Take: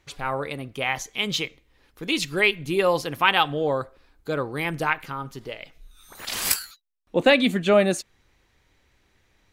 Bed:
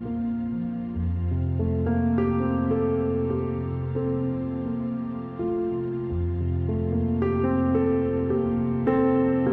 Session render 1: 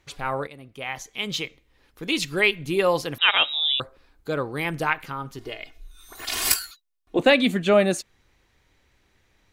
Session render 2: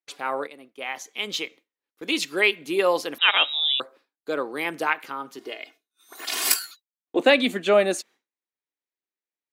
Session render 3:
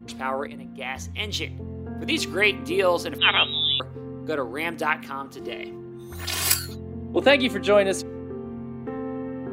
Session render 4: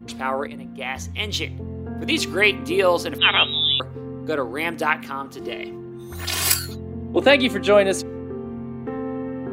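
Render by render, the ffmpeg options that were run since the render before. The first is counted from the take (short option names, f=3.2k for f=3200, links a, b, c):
-filter_complex "[0:a]asettb=1/sr,asplit=3[a][b][c];[a]atrim=end=3.184[d];[b]atrim=start=3.18:end=3.8,asetpts=PTS-STARTPTS,afade=t=in:d=0.004:c=qsin,afade=t=out:st=0.616:d=0.004:c=qsin,lowpass=f=3.4k:t=q:w=0.5098,lowpass=f=3.4k:t=q:w=0.6013,lowpass=f=3.4k:t=q:w=0.9,lowpass=f=3.4k:t=q:w=2.563,afreqshift=-4000[e];[c]atrim=start=3.796[f];[d][e]acrossfade=d=0.004:c1=hsin:c2=qsin[g];[g][f]acrossfade=d=0.004:c1=qsin:c2=hsin,asettb=1/sr,asplit=3[h][i][j];[h]atrim=end=5.384[k];[i]atrim=start=5.38:end=7.19,asetpts=PTS-STARTPTS,afade=t=in:d=0.004:c=qsin,afade=t=out:st=1.806:d=0.004:c=qsin,aecho=1:1:2.8:0.72,atrim=end_sample=79821[l];[j]atrim=start=7.186[m];[k][l]acrossfade=d=0.004:c1=hsin:c2=qsin[n];[n][m]acrossfade=d=0.004:c1=qsin:c2=hsin,asplit=2[o][p];[o]atrim=end=0.47,asetpts=PTS-STARTPTS,afade=t=out:st=0.466:d=0.004:c=hsin:silence=0.223872[q];[p]atrim=start=0.47,asetpts=PTS-STARTPTS,afade=t=in:d=1.82:c=qsin:silence=0.223872[r];[q][r]concat=n=2:v=0:a=1"
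-af "highpass=f=250:w=0.5412,highpass=f=250:w=1.3066,agate=range=-33dB:threshold=-45dB:ratio=3:detection=peak"
-filter_complex "[1:a]volume=-10.5dB[a];[0:a][a]amix=inputs=2:normalize=0"
-af "volume=3dB,alimiter=limit=-3dB:level=0:latency=1"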